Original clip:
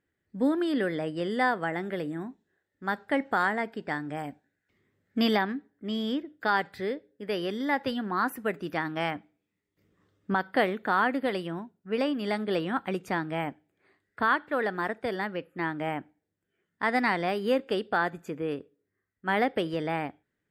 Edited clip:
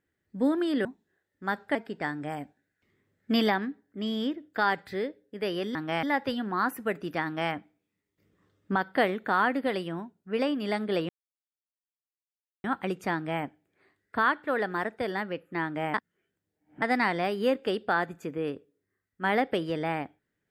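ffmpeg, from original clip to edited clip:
-filter_complex "[0:a]asplit=8[a][b][c][d][e][f][g][h];[a]atrim=end=0.852[i];[b]atrim=start=2.248:end=3.152[j];[c]atrim=start=3.618:end=7.622[k];[d]atrim=start=8.828:end=9.112[l];[e]atrim=start=7.618:end=12.68,asetpts=PTS-STARTPTS,afade=t=out:st=5.058:d=0.004:c=hsin,apad=pad_dur=1.55[m];[f]atrim=start=12.68:end=15.982,asetpts=PTS-STARTPTS,afade=t=in:d=0.004:c=hsin[n];[g]atrim=start=15.978:end=16.862,asetpts=PTS-STARTPTS,areverse[o];[h]atrim=start=16.858[p];[i][j]acrossfade=d=0.004:c1=hsin:c2=hsin[q];[q][k]acrossfade=d=0.004:c1=hsin:c2=hsin[r];[r][l]acrossfade=d=0.004:c1=hsin:c2=hsin[s];[m][n]concat=n=2:v=0:a=1[t];[s][t]acrossfade=d=0.004:c1=hsin:c2=hsin[u];[u][o]acrossfade=d=0.004:c1=hsin:c2=hsin[v];[v][p]acrossfade=d=0.004:c1=hsin:c2=hsin"

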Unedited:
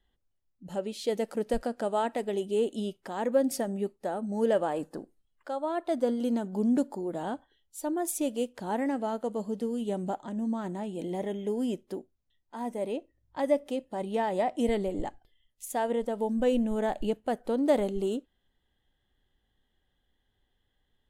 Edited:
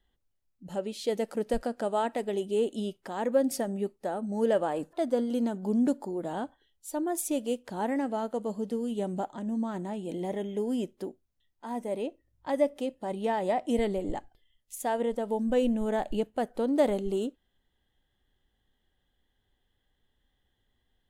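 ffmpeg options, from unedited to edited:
-filter_complex "[0:a]asplit=2[a][b];[a]atrim=end=4.932[c];[b]atrim=start=5.828[d];[c][d]acrossfade=d=0.004:c1=hsin:c2=hsin"

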